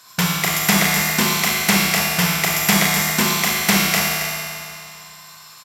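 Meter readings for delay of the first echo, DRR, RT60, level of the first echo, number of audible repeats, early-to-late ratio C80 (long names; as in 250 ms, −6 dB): 274 ms, −4.5 dB, 2.5 s, −9.0 dB, 1, −1.5 dB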